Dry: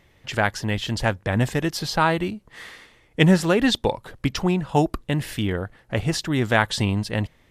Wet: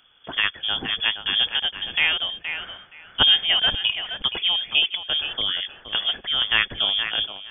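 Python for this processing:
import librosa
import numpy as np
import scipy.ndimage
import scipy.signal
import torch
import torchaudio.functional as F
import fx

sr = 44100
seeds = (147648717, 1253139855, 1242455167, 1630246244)

y = fx.echo_thinned(x, sr, ms=471, feedback_pct=17, hz=350.0, wet_db=-8.0)
y = fx.freq_invert(y, sr, carrier_hz=3400)
y = y * librosa.db_to_amplitude(-1.5)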